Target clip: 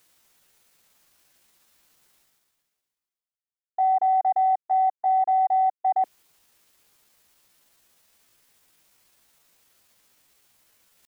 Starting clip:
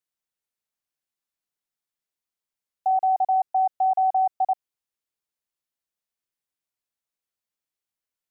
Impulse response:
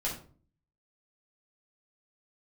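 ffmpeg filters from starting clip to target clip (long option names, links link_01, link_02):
-af "afwtdn=0.02,areverse,acompressor=mode=upward:threshold=-30dB:ratio=2.5,areverse,atempo=0.75"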